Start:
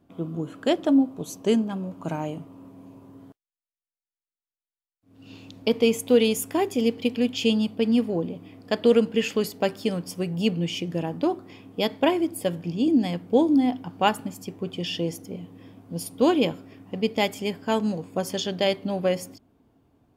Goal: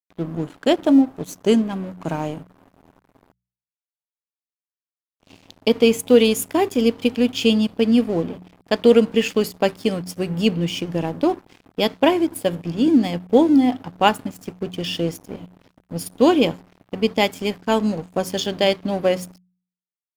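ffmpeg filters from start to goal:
-af "aeval=exprs='sgn(val(0))*max(abs(val(0))-0.00708,0)':c=same,bandreject=f=60.34:t=h:w=4,bandreject=f=120.68:t=h:w=4,bandreject=f=181.02:t=h:w=4,volume=5.5dB"

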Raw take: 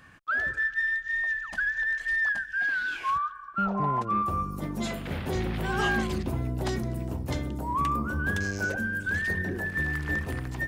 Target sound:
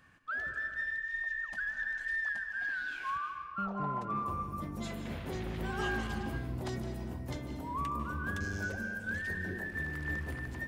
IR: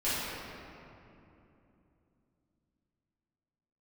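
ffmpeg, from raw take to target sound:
-filter_complex "[0:a]asplit=2[a][b];[1:a]atrim=start_sample=2205,afade=t=out:st=0.43:d=0.01,atrim=end_sample=19404,adelay=145[c];[b][c]afir=irnorm=-1:irlink=0,volume=-15dB[d];[a][d]amix=inputs=2:normalize=0,volume=-9dB"

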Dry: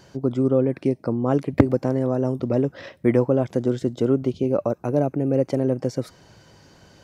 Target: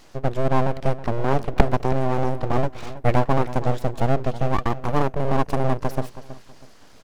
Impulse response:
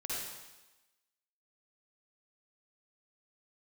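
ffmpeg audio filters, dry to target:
-filter_complex "[0:a]aeval=exprs='abs(val(0))':c=same,asplit=2[a][b];[b]adelay=322,lowpass=f=4.9k:p=1,volume=-14.5dB,asplit=2[c][d];[d]adelay=322,lowpass=f=4.9k:p=1,volume=0.3,asplit=2[e][f];[f]adelay=322,lowpass=f=4.9k:p=1,volume=0.3[g];[a][c][e][g]amix=inputs=4:normalize=0,volume=2dB"

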